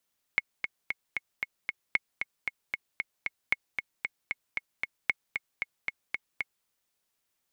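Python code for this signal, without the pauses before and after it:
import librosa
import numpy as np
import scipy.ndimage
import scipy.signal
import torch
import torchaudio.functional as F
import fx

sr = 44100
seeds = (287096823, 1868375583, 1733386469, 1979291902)

y = fx.click_track(sr, bpm=229, beats=6, bars=4, hz=2180.0, accent_db=6.5, level_db=-10.5)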